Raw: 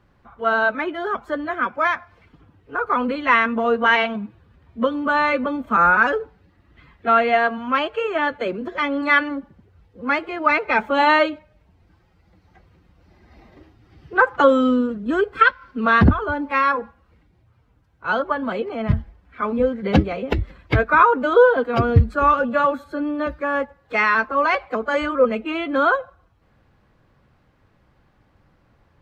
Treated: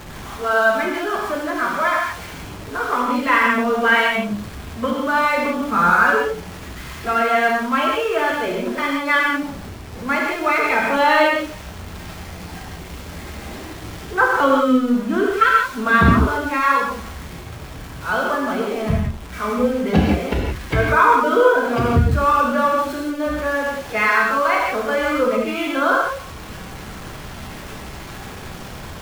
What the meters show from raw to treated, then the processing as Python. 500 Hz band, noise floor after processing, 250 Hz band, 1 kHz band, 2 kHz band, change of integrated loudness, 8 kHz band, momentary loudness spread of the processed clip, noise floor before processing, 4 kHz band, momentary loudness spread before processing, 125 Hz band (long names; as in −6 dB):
+0.5 dB, −35 dBFS, +2.0 dB, +1.5 dB, +2.0 dB, +1.5 dB, can't be measured, 19 LU, −60 dBFS, +3.5 dB, 11 LU, +1.0 dB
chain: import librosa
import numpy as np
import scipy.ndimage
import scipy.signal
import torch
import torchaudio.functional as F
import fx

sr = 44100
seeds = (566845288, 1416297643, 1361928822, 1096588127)

y = x + 0.5 * 10.0 ** (-28.5 / 20.0) * np.sign(x)
y = fx.rev_gated(y, sr, seeds[0], gate_ms=200, shape='flat', drr_db=-2.5)
y = F.gain(torch.from_numpy(y), -3.5).numpy()